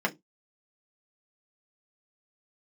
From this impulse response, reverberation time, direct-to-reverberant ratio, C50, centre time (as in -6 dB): 0.15 s, -0.5 dB, 23.0 dB, 6 ms